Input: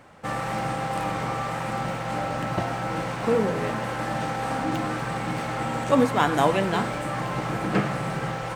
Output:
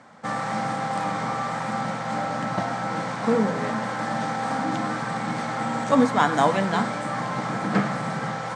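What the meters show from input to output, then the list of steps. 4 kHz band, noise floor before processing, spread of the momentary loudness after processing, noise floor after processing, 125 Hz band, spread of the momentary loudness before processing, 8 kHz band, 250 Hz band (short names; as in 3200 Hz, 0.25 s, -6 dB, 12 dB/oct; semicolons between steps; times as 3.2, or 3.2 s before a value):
-0.5 dB, -31 dBFS, 8 LU, -31 dBFS, -2.0 dB, 7 LU, +0.5 dB, +2.0 dB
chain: speaker cabinet 170–8200 Hz, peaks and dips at 220 Hz +5 dB, 360 Hz -10 dB, 540 Hz -3 dB, 2700 Hz -9 dB; gain +2.5 dB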